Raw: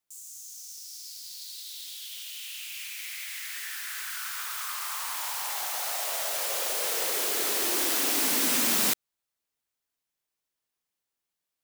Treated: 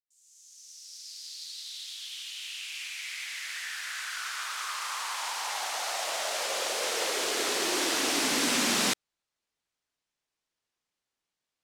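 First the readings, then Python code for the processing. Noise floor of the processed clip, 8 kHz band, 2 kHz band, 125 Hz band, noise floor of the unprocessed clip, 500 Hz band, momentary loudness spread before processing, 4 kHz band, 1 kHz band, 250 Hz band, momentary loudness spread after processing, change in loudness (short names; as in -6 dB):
under -85 dBFS, -2.0 dB, +2.5 dB, n/a, under -85 dBFS, +2.5 dB, 17 LU, +2.0 dB, +2.5 dB, +2.5 dB, 14 LU, -2.5 dB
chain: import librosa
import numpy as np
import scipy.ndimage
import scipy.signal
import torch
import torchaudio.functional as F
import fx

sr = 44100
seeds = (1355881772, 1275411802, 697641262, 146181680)

y = fx.fade_in_head(x, sr, length_s=1.23)
y = scipy.signal.sosfilt(scipy.signal.butter(2, 6900.0, 'lowpass', fs=sr, output='sos'), y)
y = y * librosa.db_to_amplitude(2.5)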